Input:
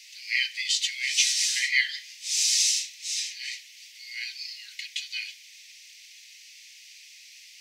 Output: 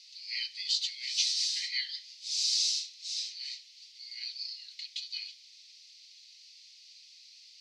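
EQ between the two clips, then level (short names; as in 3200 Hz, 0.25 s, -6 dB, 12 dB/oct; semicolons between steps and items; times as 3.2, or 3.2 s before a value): band-pass 4400 Hz, Q 3.8; 0.0 dB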